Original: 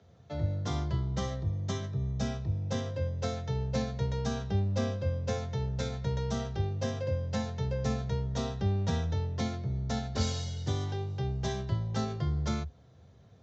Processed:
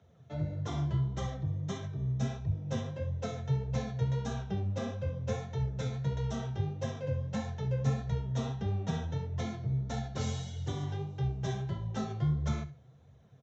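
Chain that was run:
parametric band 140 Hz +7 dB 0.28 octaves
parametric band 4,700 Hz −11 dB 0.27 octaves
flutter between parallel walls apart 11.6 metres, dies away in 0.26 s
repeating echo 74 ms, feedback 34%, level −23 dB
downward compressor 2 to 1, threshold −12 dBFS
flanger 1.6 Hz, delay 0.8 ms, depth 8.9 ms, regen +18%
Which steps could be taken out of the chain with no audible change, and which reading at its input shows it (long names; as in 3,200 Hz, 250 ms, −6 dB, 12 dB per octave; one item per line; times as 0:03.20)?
downward compressor, threshold −12 dBFS: peak of its input −16.5 dBFS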